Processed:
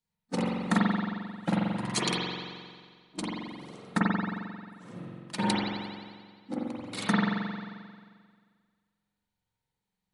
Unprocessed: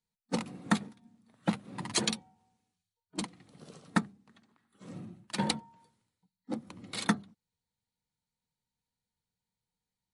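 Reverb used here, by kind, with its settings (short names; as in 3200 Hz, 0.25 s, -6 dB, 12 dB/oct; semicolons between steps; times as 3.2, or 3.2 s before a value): spring tank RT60 1.8 s, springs 44 ms, chirp 45 ms, DRR -6 dB; gain -1.5 dB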